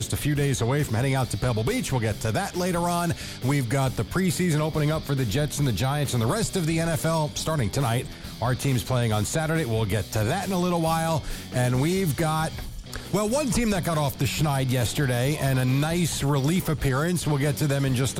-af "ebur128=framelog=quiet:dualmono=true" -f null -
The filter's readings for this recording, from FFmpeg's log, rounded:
Integrated loudness:
  I:         -21.9 LUFS
  Threshold: -32.0 LUFS
Loudness range:
  LRA:         1.5 LU
  Threshold: -42.0 LUFS
  LRA low:   -22.6 LUFS
  LRA high:  -21.0 LUFS